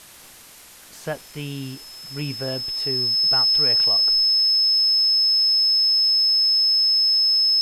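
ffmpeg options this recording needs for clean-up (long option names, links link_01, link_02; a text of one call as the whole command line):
ffmpeg -i in.wav -af "adeclick=threshold=4,bandreject=frequency=5200:width=30,afwtdn=0.0063" out.wav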